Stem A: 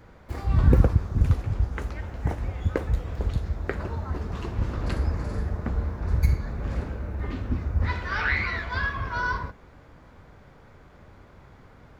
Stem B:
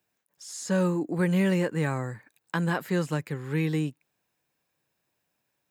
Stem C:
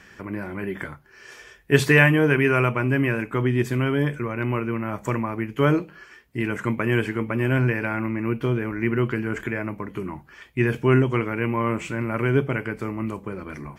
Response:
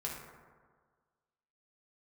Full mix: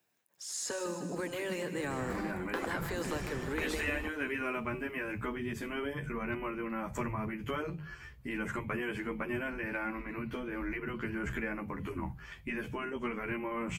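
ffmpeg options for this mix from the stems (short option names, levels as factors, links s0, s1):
-filter_complex "[0:a]adelay=1800,volume=0.668[s0];[1:a]lowshelf=f=75:g=-10.5,alimiter=limit=0.0794:level=0:latency=1:release=154,acrossover=split=240|3000[s1][s2][s3];[s2]acompressor=threshold=0.02:ratio=6[s4];[s1][s4][s3]amix=inputs=3:normalize=0,volume=1.06,asplit=3[s5][s6][s7];[s6]volume=0.316[s8];[2:a]acompressor=threshold=0.0447:ratio=3,lowshelf=f=200:t=q:w=1.5:g=12.5,asplit=2[s9][s10];[s10]adelay=11.9,afreqshift=-1.3[s11];[s9][s11]amix=inputs=2:normalize=1,adelay=1900,volume=0.944[s12];[s7]apad=whole_len=608215[s13];[s0][s13]sidechaingate=range=0.0224:threshold=0.00178:ratio=16:detection=peak[s14];[s8]aecho=0:1:154|308|462|616|770|924|1078|1232|1386|1540:1|0.6|0.36|0.216|0.13|0.0778|0.0467|0.028|0.0168|0.0101[s15];[s14][s5][s12][s15]amix=inputs=4:normalize=0,acrossover=split=420|3000[s16][s17][s18];[s17]acompressor=threshold=0.0282:ratio=6[s19];[s16][s19][s18]amix=inputs=3:normalize=0,afftfilt=real='re*lt(hypot(re,im),0.2)':imag='im*lt(hypot(re,im),0.2)':win_size=1024:overlap=0.75"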